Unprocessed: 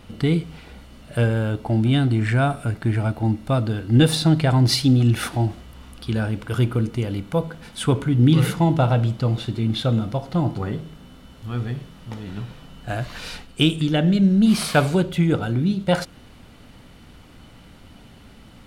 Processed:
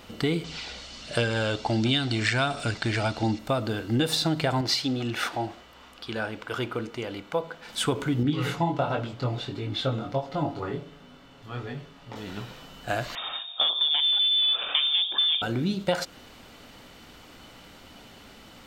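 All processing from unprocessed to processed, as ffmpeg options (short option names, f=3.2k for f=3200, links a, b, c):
-filter_complex "[0:a]asettb=1/sr,asplit=3[a][b][c];[a]atrim=end=0.444[d];[b]atrim=start=0.44:end=3.39,asetpts=PTS-STARTPTS,afade=t=in:d=0.004:c=qsin,afade=t=out:st=2.946:d=0.004:c=qsin,lowpass=f=8.5k:w=0.5412,lowpass=f=8.5k:w=1.3066,equalizer=f=4.8k:w=0.7:g=12,aphaser=in_gain=1:out_gain=1:delay=1.9:decay=0.28:speed=1.4:type=triangular[e];[c]atrim=start=3.386[f];[d][e]acrossfade=d=0.004:c1=hsin:c2=qsin[g];[g][f]acrossfade=d=0.004:c1=qsin:c2=hsin,asettb=1/sr,asplit=3[h][i][j];[h]atrim=end=4.614[k];[i]atrim=start=4.61:end=7.69,asetpts=PTS-STARTPTS,afade=t=in:d=0.004:c=qsin,afade=t=out:st=3.076:d=0.004:c=qsin,lowpass=f=2.9k:p=1,lowshelf=f=330:g=-10.5[l];[j]atrim=start=7.686[m];[k][l]acrossfade=d=0.004:c1=hsin:c2=qsin[n];[n][m]acrossfade=d=0.004:c1=qsin:c2=hsin,asettb=1/sr,asplit=3[o][p][q];[o]atrim=end=8.234[r];[p]atrim=start=8.23:end=12.16,asetpts=PTS-STARTPTS,afade=t=in:d=0.004:c=qsin,afade=t=out:st=3.926:d=0.004:c=qsin,aemphasis=mode=reproduction:type=50kf,aecho=1:1:7.1:0.49,atrim=end_sample=173313,flanger=delay=20:depth=3.8:speed=1.4[s];[q]atrim=start=12.156[t];[r][s]acrossfade=d=0.004:c1=hsin:c2=qsin[u];[u][t]acrossfade=d=0.004:c1=qsin:c2=hsin,asettb=1/sr,asplit=3[v][w][x];[v]atrim=end=13.154[y];[w]atrim=start=13.15:end=15.42,asetpts=PTS-STARTPTS,afade=t=in:d=0.004:c=qsin,afade=t=out:st=2.266:d=0.004:c=qsin,equalizer=f=1.6k:w=3.9:g=-11.5,volume=17.5dB,asoftclip=hard,volume=-17.5dB,lowpass=f=3.1k:t=q:w=0.5098,lowpass=f=3.1k:t=q:w=0.6013,lowpass=f=3.1k:t=q:w=0.9,lowpass=f=3.1k:t=q:w=2.563,afreqshift=-3700[z];[x]atrim=start=15.416[aa];[y][z]acrossfade=d=0.004:c1=hsin:c2=qsin[ab];[ab][aa]acrossfade=d=0.004:c1=qsin:c2=hsin,bass=f=250:g=-11,treble=f=4k:g=4,acompressor=threshold=-23dB:ratio=6,equalizer=f=10k:w=4.6:g=-14.5,volume=2dB"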